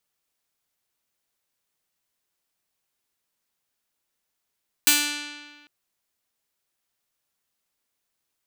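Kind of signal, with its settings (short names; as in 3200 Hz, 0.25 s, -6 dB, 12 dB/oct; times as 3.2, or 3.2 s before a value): plucked string D4, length 0.80 s, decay 1.56 s, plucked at 0.47, bright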